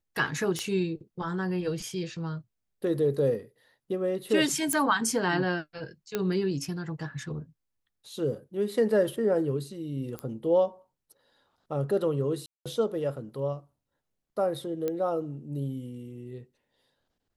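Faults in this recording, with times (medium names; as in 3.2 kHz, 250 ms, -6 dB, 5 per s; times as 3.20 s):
0.59 s: pop -17 dBFS
4.73 s: pop -13 dBFS
6.15 s: pop -14 dBFS
10.19 s: pop -21 dBFS
12.46–12.66 s: dropout 196 ms
14.88 s: pop -18 dBFS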